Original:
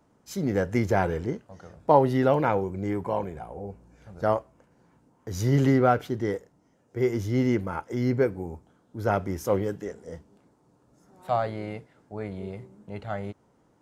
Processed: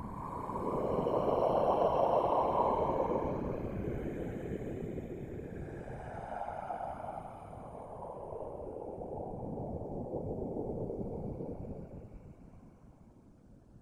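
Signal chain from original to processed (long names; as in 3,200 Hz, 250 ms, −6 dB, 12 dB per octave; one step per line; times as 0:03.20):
spectral magnitudes quantised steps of 15 dB
extreme stretch with random phases 17×, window 0.10 s, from 0:03.03
random phases in short frames
level −3 dB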